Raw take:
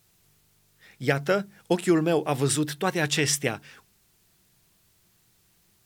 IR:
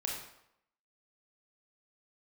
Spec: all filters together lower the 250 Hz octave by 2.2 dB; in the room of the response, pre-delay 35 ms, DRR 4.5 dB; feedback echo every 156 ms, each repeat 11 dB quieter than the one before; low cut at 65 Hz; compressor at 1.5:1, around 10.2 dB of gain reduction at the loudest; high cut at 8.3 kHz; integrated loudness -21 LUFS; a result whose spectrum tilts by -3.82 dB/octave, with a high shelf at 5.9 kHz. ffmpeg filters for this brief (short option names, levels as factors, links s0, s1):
-filter_complex "[0:a]highpass=65,lowpass=8300,equalizer=f=250:t=o:g=-3.5,highshelf=f=5900:g=5.5,acompressor=threshold=0.00398:ratio=1.5,aecho=1:1:156|312|468:0.282|0.0789|0.0221,asplit=2[s0][s1];[1:a]atrim=start_sample=2205,adelay=35[s2];[s1][s2]afir=irnorm=-1:irlink=0,volume=0.422[s3];[s0][s3]amix=inputs=2:normalize=0,volume=4.47"